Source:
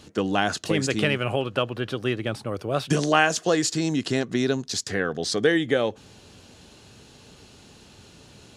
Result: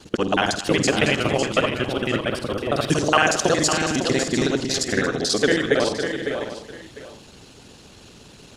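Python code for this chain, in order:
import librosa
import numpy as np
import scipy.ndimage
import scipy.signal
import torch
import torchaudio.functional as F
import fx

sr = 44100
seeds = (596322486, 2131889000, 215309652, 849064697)

p1 = fx.local_reverse(x, sr, ms=46.0)
p2 = fx.echo_multitap(p1, sr, ms=(51, 87, 229, 554, 591), db=(-11.5, -12.0, -15.0, -8.0, -12.5))
p3 = fx.hpss(p2, sr, part='harmonic', gain_db=-9)
p4 = p3 + fx.echo_single(p3, sr, ms=700, db=-13.5, dry=0)
y = F.gain(torch.from_numpy(p4), 6.0).numpy()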